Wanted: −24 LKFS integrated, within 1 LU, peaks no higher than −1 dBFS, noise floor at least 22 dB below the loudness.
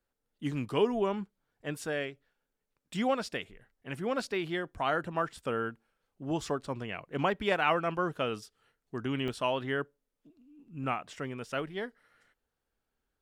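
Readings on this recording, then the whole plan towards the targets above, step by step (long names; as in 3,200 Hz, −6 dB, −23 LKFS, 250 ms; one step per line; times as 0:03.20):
number of dropouts 2; longest dropout 1.6 ms; integrated loudness −33.5 LKFS; sample peak −14.0 dBFS; target loudness −24.0 LKFS
→ repair the gap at 0:09.28/0:10.84, 1.6 ms
level +9.5 dB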